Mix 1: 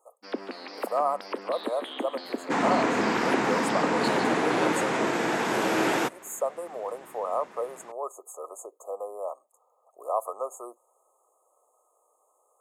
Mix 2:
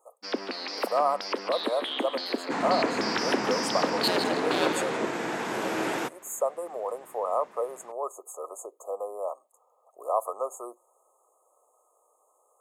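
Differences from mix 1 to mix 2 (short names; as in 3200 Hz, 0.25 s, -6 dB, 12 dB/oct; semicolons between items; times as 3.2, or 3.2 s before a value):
first sound: remove tape spacing loss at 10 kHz 20 dB; second sound -5.5 dB; reverb: on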